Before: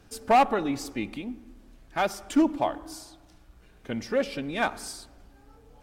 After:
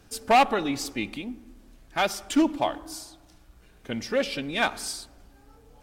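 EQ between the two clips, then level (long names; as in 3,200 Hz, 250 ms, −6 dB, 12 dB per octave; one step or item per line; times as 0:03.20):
high-shelf EQ 4,500 Hz +5 dB
dynamic equaliser 3,300 Hz, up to +6 dB, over −44 dBFS, Q 0.89
0.0 dB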